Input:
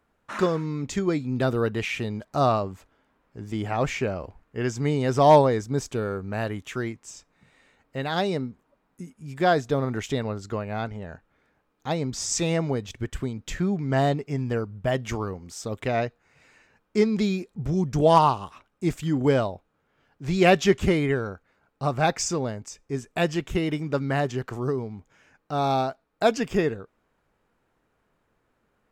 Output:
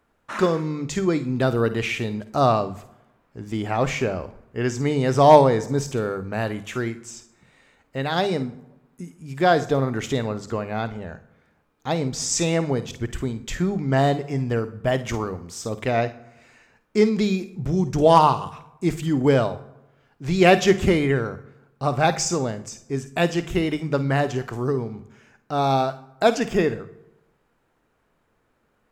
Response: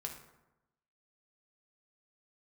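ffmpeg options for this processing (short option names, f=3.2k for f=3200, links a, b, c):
-filter_complex "[0:a]bandreject=f=50:t=h:w=6,bandreject=f=100:t=h:w=6,bandreject=f=150:t=h:w=6,bandreject=f=200:t=h:w=6,asplit=2[a][b];[1:a]atrim=start_sample=2205,highshelf=f=4.9k:g=8.5,adelay=52[c];[b][c]afir=irnorm=-1:irlink=0,volume=-12dB[d];[a][d]amix=inputs=2:normalize=0,volume=3dB"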